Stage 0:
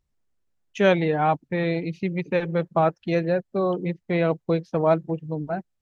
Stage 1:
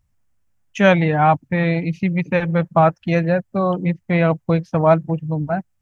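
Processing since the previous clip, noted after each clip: fifteen-band EQ 100 Hz +8 dB, 400 Hz -11 dB, 4000 Hz -7 dB; gain +8 dB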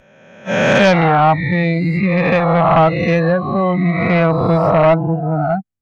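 spectral swells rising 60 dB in 1.98 s; spectral noise reduction 20 dB; sine folder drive 5 dB, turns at 0 dBFS; gain -6 dB

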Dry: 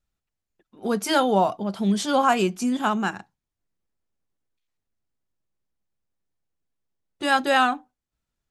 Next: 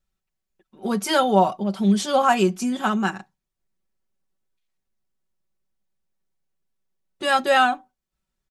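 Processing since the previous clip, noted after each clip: comb 5.3 ms, depth 58%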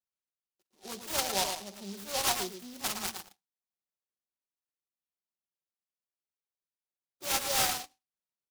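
band-pass 1400 Hz, Q 0.92; echo 0.111 s -7.5 dB; noise-modulated delay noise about 4400 Hz, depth 0.2 ms; gain -9 dB

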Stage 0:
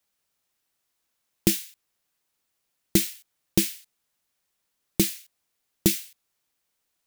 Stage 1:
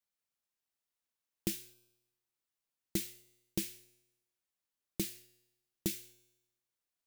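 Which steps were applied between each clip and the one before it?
resonator 120 Hz, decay 0.97 s, harmonics all, mix 50%; gain -8.5 dB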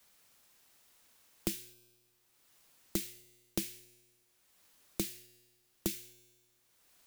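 three-band squash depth 70%; gain +3 dB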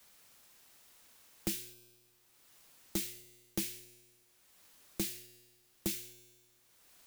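soft clip -30.5 dBFS, distortion -8 dB; gain +4 dB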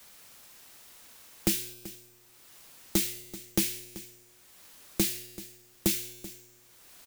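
echo 0.384 s -17 dB; gain +9 dB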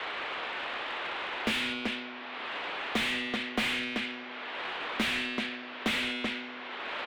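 mistuned SSB -110 Hz 360–3600 Hz; overdrive pedal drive 36 dB, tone 1600 Hz, clips at -19.5 dBFS; gain +1.5 dB

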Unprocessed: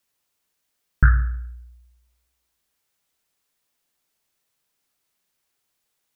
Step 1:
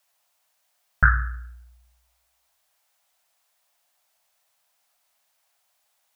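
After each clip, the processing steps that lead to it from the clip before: resonant low shelf 500 Hz -10 dB, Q 3; gain +4.5 dB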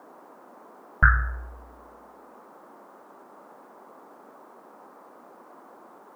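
band noise 220–1200 Hz -50 dBFS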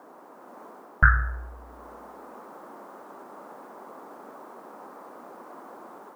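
AGC gain up to 5 dB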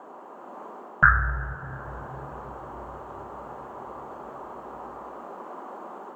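reverb RT60 3.5 s, pre-delay 3 ms, DRR 9.5 dB; gain -3.5 dB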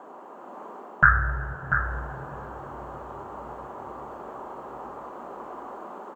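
echo 0.69 s -8 dB

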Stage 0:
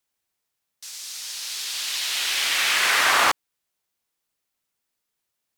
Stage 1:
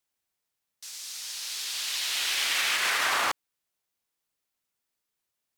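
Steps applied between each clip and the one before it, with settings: limiter -13 dBFS, peak gain reduction 6 dB; gain -3.5 dB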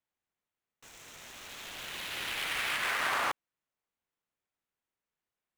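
median filter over 9 samples; gain -3 dB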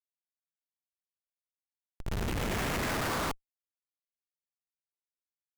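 expander -39 dBFS; thirty-one-band EQ 315 Hz -9 dB, 5000 Hz -9 dB, 8000 Hz -3 dB; Schmitt trigger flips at -31 dBFS; gain +8 dB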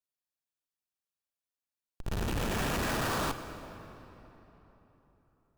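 notch 2100 Hz, Q 9.1; on a send at -10 dB: reverb RT60 3.7 s, pre-delay 31 ms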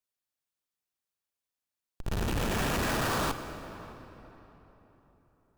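tape echo 0.605 s, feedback 36%, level -18.5 dB, low-pass 1700 Hz; gain +2 dB

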